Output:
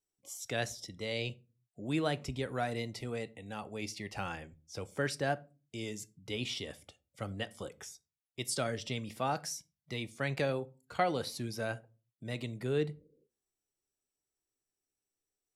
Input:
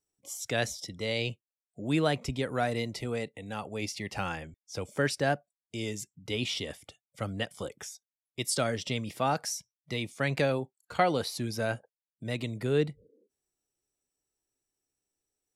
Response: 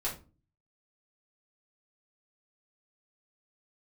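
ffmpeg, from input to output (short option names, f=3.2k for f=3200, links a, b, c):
-filter_complex "[0:a]asplit=2[a][b];[1:a]atrim=start_sample=2205,afade=t=out:st=0.41:d=0.01,atrim=end_sample=18522[c];[b][c]afir=irnorm=-1:irlink=0,volume=-16.5dB[d];[a][d]amix=inputs=2:normalize=0,volume=-6dB"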